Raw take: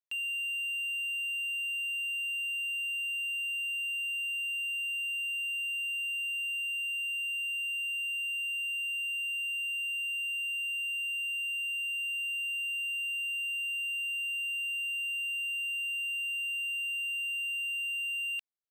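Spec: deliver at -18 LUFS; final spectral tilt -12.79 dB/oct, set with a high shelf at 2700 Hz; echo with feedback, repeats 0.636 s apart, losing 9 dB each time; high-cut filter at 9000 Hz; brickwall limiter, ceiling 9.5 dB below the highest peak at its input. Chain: LPF 9000 Hz; high shelf 2700 Hz +3.5 dB; limiter -38 dBFS; feedback echo 0.636 s, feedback 35%, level -9 dB; gain +18 dB

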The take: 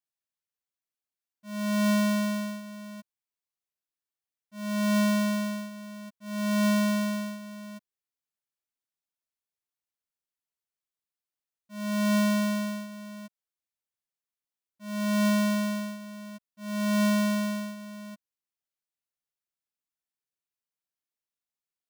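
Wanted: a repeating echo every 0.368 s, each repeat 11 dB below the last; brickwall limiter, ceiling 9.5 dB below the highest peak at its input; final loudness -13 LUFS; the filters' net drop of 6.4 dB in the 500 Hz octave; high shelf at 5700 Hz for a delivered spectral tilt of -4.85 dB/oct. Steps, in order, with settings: bell 500 Hz -9 dB; high shelf 5700 Hz -5.5 dB; limiter -31 dBFS; feedback echo 0.368 s, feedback 28%, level -11 dB; gain +24 dB

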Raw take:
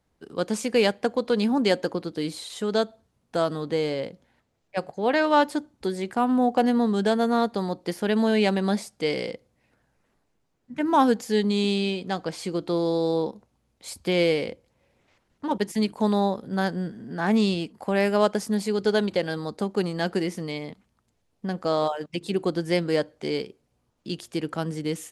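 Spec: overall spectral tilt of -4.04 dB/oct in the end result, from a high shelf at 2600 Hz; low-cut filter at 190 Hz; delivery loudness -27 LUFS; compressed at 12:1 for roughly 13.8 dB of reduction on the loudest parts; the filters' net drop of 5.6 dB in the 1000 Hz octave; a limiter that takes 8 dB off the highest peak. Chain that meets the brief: HPF 190 Hz; bell 1000 Hz -8.5 dB; high shelf 2600 Hz +5.5 dB; compressor 12:1, threshold -32 dBFS; gain +12 dB; limiter -15.5 dBFS

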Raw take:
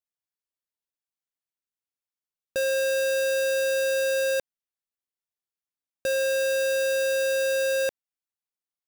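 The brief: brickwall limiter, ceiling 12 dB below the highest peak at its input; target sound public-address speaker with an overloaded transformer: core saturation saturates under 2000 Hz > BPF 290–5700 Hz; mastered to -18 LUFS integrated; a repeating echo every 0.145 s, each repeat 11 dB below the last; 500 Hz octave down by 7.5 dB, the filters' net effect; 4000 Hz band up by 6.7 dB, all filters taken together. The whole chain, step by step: bell 500 Hz -7.5 dB; bell 4000 Hz +8.5 dB; limiter -30 dBFS; feedback echo 0.145 s, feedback 28%, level -11 dB; core saturation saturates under 2000 Hz; BPF 290–5700 Hz; gain +22 dB

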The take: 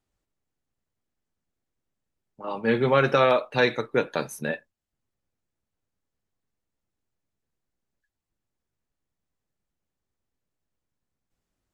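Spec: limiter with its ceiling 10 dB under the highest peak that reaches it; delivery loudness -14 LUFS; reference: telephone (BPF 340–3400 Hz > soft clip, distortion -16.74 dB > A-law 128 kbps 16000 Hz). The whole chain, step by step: limiter -17 dBFS; BPF 340–3400 Hz; soft clip -22.5 dBFS; gain +19 dB; A-law 128 kbps 16000 Hz

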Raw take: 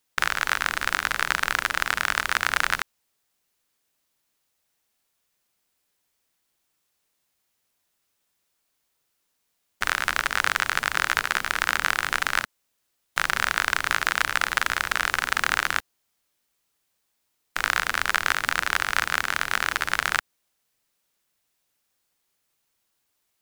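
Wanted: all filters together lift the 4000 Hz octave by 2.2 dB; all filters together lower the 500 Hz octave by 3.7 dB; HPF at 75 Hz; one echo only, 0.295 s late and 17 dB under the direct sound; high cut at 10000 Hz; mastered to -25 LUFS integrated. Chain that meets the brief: HPF 75 Hz; LPF 10000 Hz; bell 500 Hz -5 dB; bell 4000 Hz +3 dB; echo 0.295 s -17 dB; gain -1 dB

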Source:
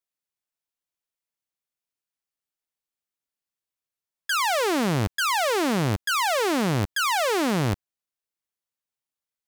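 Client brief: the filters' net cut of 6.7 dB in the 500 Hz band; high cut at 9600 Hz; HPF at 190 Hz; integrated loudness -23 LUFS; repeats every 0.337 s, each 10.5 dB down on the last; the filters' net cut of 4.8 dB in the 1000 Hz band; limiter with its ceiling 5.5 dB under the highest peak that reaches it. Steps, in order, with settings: HPF 190 Hz; LPF 9600 Hz; bell 500 Hz -7.5 dB; bell 1000 Hz -4 dB; limiter -19 dBFS; feedback echo 0.337 s, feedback 30%, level -10.5 dB; gain +7 dB

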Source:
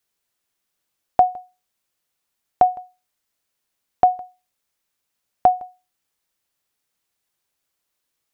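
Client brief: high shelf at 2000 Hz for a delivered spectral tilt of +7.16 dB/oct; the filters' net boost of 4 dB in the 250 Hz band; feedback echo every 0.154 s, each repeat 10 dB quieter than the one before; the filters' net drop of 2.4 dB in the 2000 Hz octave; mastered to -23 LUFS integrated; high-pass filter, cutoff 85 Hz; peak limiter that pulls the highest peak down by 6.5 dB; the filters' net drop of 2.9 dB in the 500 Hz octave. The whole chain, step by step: HPF 85 Hz; bell 250 Hz +7.5 dB; bell 500 Hz -7.5 dB; high shelf 2000 Hz +8 dB; bell 2000 Hz -7.5 dB; limiter -12 dBFS; feedback echo 0.154 s, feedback 32%, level -10 dB; gain +5 dB

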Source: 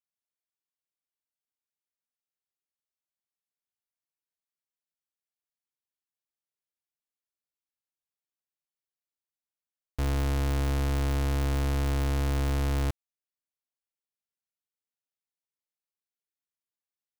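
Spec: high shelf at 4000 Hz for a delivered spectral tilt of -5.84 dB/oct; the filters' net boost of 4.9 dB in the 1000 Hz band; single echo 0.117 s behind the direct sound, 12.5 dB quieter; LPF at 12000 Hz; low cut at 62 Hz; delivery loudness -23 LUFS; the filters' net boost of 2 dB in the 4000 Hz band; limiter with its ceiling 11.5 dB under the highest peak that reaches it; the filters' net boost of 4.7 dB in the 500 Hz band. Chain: HPF 62 Hz; LPF 12000 Hz; bell 500 Hz +4.5 dB; bell 1000 Hz +5 dB; high shelf 4000 Hz -9 dB; bell 4000 Hz +7.5 dB; limiter -27.5 dBFS; echo 0.117 s -12.5 dB; gain +16.5 dB

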